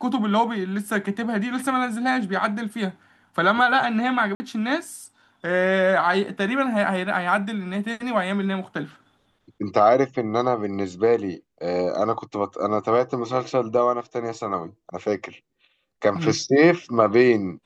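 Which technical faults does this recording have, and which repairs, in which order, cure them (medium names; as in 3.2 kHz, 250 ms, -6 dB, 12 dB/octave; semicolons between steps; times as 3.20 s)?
4.35–4.40 s: dropout 50 ms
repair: interpolate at 4.35 s, 50 ms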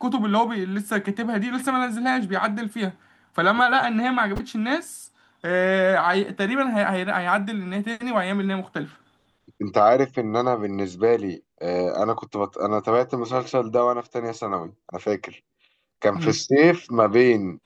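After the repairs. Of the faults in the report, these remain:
nothing left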